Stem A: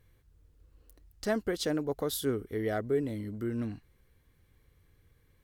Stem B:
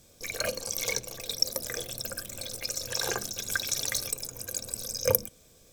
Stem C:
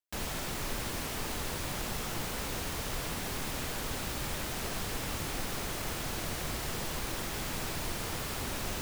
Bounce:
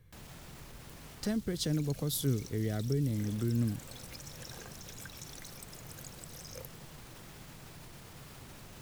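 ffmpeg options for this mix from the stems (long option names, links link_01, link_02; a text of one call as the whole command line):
ffmpeg -i stem1.wav -i stem2.wav -i stem3.wav -filter_complex "[0:a]volume=1dB[link_01];[1:a]acompressor=threshold=-34dB:ratio=6,adelay=1500,volume=-11.5dB[link_02];[2:a]alimiter=level_in=6dB:limit=-24dB:level=0:latency=1:release=34,volume=-6dB,volume=-12.5dB[link_03];[link_01][link_02][link_03]amix=inputs=3:normalize=0,equalizer=frequency=140:width=1.6:gain=9,acrossover=split=270|3000[link_04][link_05][link_06];[link_05]acompressor=threshold=-41dB:ratio=6[link_07];[link_04][link_07][link_06]amix=inputs=3:normalize=0" out.wav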